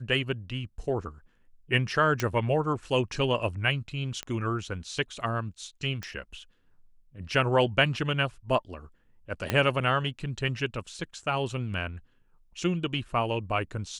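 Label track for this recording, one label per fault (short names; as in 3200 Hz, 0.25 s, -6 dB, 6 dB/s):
2.200000	2.200000	pop -13 dBFS
4.230000	4.230000	pop -18 dBFS
6.030000	6.030000	pop -20 dBFS
9.500000	9.500000	pop -11 dBFS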